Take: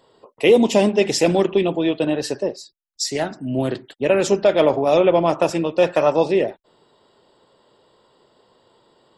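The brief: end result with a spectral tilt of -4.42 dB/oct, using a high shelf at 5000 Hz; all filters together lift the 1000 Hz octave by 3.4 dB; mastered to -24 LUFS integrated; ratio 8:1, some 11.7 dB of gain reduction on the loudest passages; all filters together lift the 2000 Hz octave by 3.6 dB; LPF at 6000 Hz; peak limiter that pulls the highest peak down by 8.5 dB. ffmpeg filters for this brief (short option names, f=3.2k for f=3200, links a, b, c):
-af "lowpass=6k,equalizer=f=1k:t=o:g=4,equalizer=f=2k:t=o:g=5.5,highshelf=f=5k:g=-8.5,acompressor=threshold=-21dB:ratio=8,volume=5dB,alimiter=limit=-13dB:level=0:latency=1"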